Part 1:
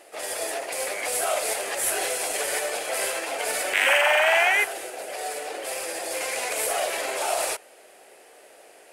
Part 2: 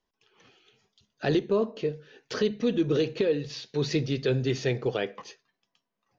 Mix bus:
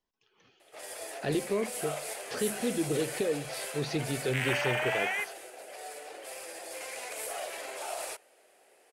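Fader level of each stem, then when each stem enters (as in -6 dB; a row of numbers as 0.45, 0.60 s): -11.5, -5.5 dB; 0.60, 0.00 s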